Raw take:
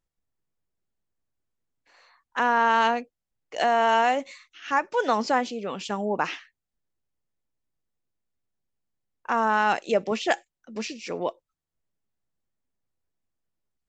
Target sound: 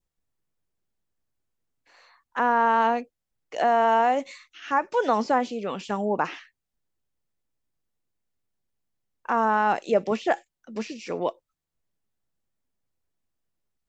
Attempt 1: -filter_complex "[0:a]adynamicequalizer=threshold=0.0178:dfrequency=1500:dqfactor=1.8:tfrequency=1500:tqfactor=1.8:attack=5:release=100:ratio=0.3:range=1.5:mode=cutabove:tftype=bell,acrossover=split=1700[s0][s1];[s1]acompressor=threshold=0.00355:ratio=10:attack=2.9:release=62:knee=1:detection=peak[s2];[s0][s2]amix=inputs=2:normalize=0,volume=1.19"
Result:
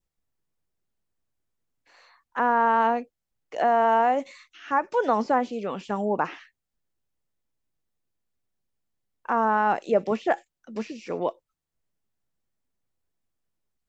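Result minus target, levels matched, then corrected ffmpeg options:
compression: peak gain reduction +6.5 dB
-filter_complex "[0:a]adynamicequalizer=threshold=0.0178:dfrequency=1500:dqfactor=1.8:tfrequency=1500:tqfactor=1.8:attack=5:release=100:ratio=0.3:range=1.5:mode=cutabove:tftype=bell,acrossover=split=1700[s0][s1];[s1]acompressor=threshold=0.00841:ratio=10:attack=2.9:release=62:knee=1:detection=peak[s2];[s0][s2]amix=inputs=2:normalize=0,volume=1.19"

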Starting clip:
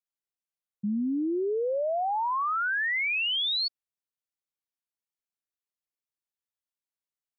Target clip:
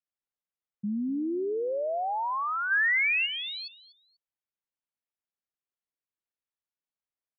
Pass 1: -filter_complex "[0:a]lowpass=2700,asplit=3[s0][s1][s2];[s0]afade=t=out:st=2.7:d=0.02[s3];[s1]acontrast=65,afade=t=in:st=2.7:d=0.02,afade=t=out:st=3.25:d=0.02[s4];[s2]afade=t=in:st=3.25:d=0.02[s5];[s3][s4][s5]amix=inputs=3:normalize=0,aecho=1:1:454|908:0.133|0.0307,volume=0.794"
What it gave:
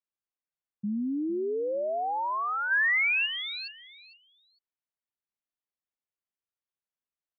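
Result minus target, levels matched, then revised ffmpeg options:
echo 210 ms late
-filter_complex "[0:a]lowpass=2700,asplit=3[s0][s1][s2];[s0]afade=t=out:st=2.7:d=0.02[s3];[s1]acontrast=65,afade=t=in:st=2.7:d=0.02,afade=t=out:st=3.25:d=0.02[s4];[s2]afade=t=in:st=3.25:d=0.02[s5];[s3][s4][s5]amix=inputs=3:normalize=0,aecho=1:1:244|488:0.133|0.0307,volume=0.794"

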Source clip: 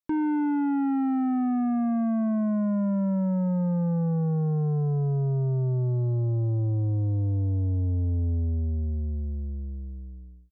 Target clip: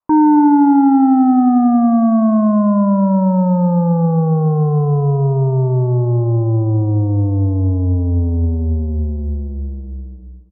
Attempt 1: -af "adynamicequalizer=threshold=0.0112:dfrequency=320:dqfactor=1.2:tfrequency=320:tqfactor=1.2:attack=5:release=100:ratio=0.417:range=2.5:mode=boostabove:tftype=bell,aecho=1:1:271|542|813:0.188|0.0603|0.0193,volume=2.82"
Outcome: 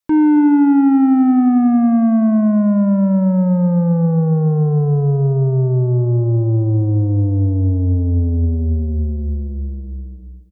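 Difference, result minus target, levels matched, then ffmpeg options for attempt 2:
1 kHz band -7.5 dB
-af "adynamicequalizer=threshold=0.0112:dfrequency=320:dqfactor=1.2:tfrequency=320:tqfactor=1.2:attack=5:release=100:ratio=0.417:range=2.5:mode=boostabove:tftype=bell,lowpass=f=1000:t=q:w=3.9,aecho=1:1:271|542|813:0.188|0.0603|0.0193,volume=2.82"

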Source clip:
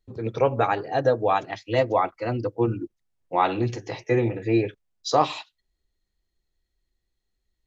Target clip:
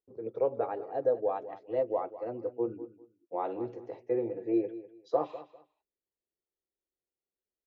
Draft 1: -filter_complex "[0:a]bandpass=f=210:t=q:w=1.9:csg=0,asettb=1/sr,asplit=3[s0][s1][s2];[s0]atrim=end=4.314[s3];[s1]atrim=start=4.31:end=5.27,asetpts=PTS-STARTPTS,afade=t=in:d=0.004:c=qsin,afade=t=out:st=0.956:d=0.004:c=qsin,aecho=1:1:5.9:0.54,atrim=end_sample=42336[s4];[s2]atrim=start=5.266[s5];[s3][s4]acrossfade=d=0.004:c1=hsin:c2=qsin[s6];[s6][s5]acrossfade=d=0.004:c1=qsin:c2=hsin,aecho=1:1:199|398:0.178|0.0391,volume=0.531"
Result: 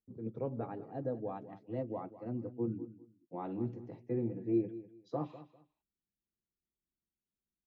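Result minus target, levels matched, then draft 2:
250 Hz band +5.5 dB
-filter_complex "[0:a]bandpass=f=470:t=q:w=1.9:csg=0,asettb=1/sr,asplit=3[s0][s1][s2];[s0]atrim=end=4.314[s3];[s1]atrim=start=4.31:end=5.27,asetpts=PTS-STARTPTS,afade=t=in:d=0.004:c=qsin,afade=t=out:st=0.956:d=0.004:c=qsin,aecho=1:1:5.9:0.54,atrim=end_sample=42336[s4];[s2]atrim=start=5.266[s5];[s3][s4]acrossfade=d=0.004:c1=hsin:c2=qsin[s6];[s6][s5]acrossfade=d=0.004:c1=qsin:c2=hsin,aecho=1:1:199|398:0.178|0.0391,volume=0.531"

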